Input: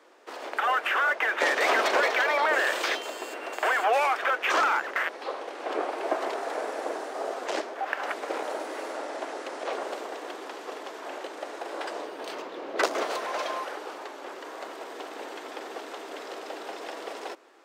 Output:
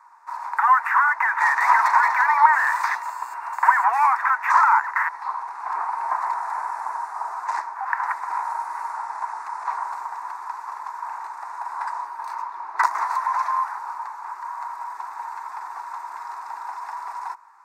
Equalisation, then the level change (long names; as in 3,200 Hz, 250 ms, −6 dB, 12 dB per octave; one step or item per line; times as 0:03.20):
dynamic equaliser 1,900 Hz, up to +8 dB, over −45 dBFS, Q 5.1
high-pass with resonance 950 Hz, resonance Q 11
phaser with its sweep stopped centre 1,300 Hz, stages 4
−1.0 dB